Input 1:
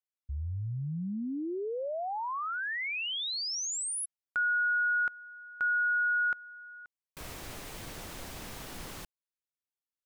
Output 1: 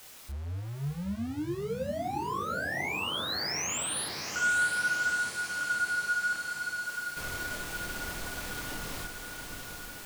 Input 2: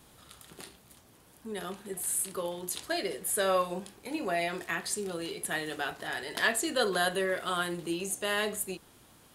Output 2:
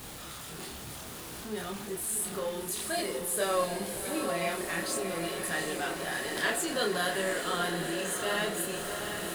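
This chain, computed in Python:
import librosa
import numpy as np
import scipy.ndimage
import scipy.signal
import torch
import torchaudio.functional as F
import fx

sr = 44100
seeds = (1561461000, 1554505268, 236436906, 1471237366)

y = x + 0.5 * 10.0 ** (-35.5 / 20.0) * np.sign(x)
y = fx.chorus_voices(y, sr, voices=2, hz=0.55, base_ms=27, depth_ms=3.5, mix_pct=45)
y = fx.echo_diffused(y, sr, ms=741, feedback_pct=70, wet_db=-6)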